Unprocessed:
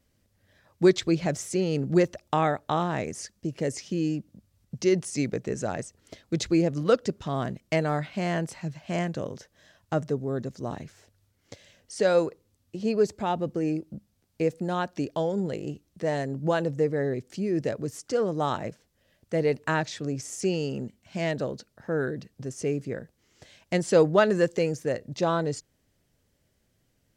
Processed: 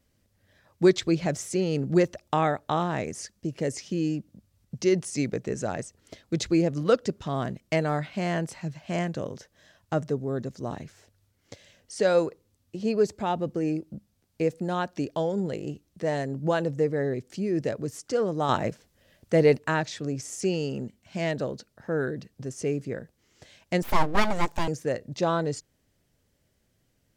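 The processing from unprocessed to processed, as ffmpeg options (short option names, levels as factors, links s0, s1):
-filter_complex "[0:a]asettb=1/sr,asplit=3[s0][s1][s2];[s0]atrim=end=23.824[s3];[s1]atrim=start=23.82:end=24.68,asetpts=PTS-STARTPTS,afade=t=in:d=0.004:c=qsin,afade=t=out:st=0.856:d=0.004:c=qsin,aeval=exprs='abs(val(0))':c=same[s4];[s2]atrim=start=24.676[s5];[s3][s4]acrossfade=d=0.004:c1=hsin:c2=qsin[s6];[s6][s5]acrossfade=d=0.004:c1=qsin:c2=hsin,asplit=3[s7][s8][s9];[s7]atrim=end=18.492[s10];[s8]atrim=start=18.488:end=19.582,asetpts=PTS-STARTPTS,volume=1.88[s11];[s9]atrim=start=19.578[s12];[s10][s11]acrossfade=d=0.004:c1=hsin:c2=hsin[s13];[s13][s12]acrossfade=d=0.004:c1=hsin:c2=hsin"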